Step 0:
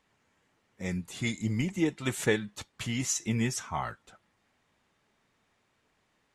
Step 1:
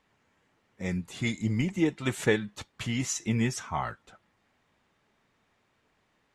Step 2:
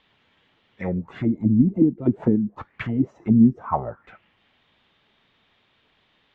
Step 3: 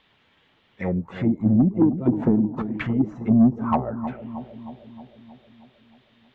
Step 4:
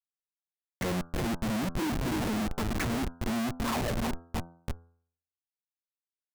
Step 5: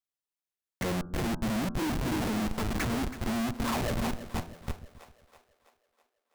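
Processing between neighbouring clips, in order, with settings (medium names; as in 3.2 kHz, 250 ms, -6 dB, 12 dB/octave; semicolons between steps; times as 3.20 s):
treble shelf 6.1 kHz -7.5 dB; trim +2 dB
touch-sensitive low-pass 250–3500 Hz down, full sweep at -24 dBFS; trim +4 dB
saturation -11 dBFS, distortion -16 dB; bucket-brigade echo 313 ms, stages 2048, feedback 61%, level -11 dB; trim +1.5 dB
overdrive pedal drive 21 dB, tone 2.7 kHz, clips at -8.5 dBFS; Schmitt trigger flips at -20.5 dBFS; de-hum 84.59 Hz, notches 19; trim -8 dB
two-band feedback delay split 410 Hz, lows 134 ms, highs 326 ms, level -13.5 dB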